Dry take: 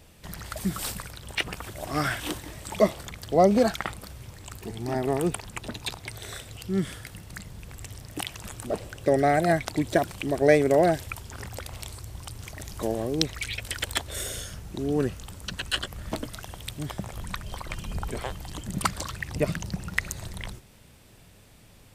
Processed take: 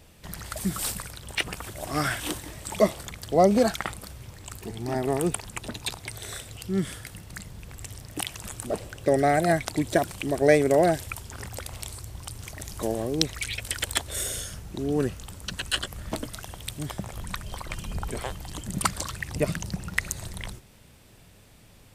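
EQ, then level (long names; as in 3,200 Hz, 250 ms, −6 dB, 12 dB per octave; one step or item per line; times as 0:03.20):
dynamic equaliser 9,500 Hz, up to +5 dB, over −50 dBFS, Q 0.83
0.0 dB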